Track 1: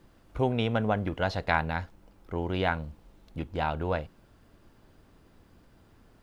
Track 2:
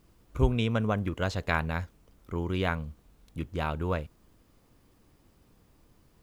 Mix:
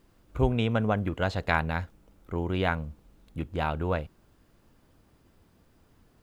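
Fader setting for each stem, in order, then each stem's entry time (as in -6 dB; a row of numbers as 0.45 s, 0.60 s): -5.5 dB, -3.5 dB; 0.00 s, 0.00 s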